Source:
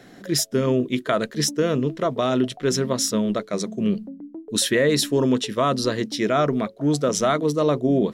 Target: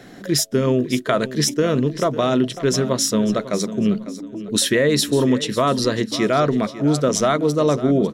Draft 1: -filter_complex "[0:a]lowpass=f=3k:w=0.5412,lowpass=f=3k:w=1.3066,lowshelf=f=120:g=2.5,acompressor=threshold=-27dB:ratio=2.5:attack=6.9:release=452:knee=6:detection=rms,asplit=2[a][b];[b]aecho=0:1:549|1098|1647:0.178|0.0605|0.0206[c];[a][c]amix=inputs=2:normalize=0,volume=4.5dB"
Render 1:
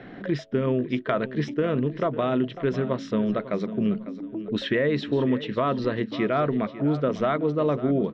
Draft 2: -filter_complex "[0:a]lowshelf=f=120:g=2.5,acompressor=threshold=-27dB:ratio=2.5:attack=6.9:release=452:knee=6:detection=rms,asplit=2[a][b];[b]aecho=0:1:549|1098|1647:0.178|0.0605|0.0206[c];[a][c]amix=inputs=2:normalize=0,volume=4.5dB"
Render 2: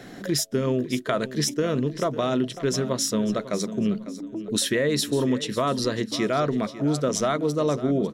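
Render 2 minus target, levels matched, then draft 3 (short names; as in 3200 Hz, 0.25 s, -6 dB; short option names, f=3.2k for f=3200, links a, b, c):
compressor: peak gain reduction +6 dB
-filter_complex "[0:a]lowshelf=f=120:g=2.5,acompressor=threshold=-16.5dB:ratio=2.5:attack=6.9:release=452:knee=6:detection=rms,asplit=2[a][b];[b]aecho=0:1:549|1098|1647:0.178|0.0605|0.0206[c];[a][c]amix=inputs=2:normalize=0,volume=4.5dB"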